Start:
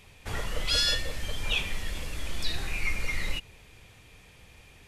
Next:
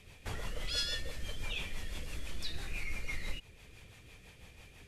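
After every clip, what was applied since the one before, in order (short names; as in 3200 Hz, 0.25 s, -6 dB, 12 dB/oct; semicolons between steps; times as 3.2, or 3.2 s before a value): compressor 1.5:1, threshold -42 dBFS, peak gain reduction 8 dB; rotary speaker horn 6 Hz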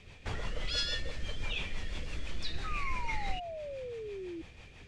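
Bessel low-pass 5500 Hz, order 4; painted sound fall, 2.64–4.42, 320–1300 Hz -44 dBFS; gain +3 dB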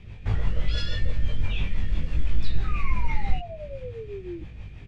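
tone controls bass +13 dB, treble -9 dB; doubler 20 ms -3 dB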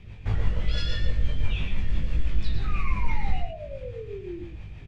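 echo 0.115 s -6.5 dB; gain -1 dB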